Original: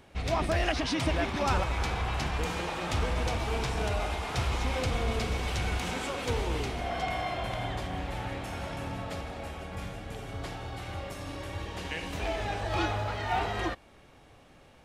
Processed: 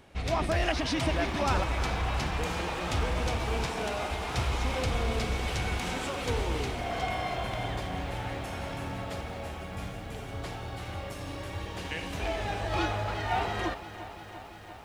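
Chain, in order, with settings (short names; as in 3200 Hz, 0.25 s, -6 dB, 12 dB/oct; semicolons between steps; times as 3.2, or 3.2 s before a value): 3.66–4.11 HPF 180 Hz 24 dB/oct; lo-fi delay 0.345 s, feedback 80%, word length 9-bit, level -14 dB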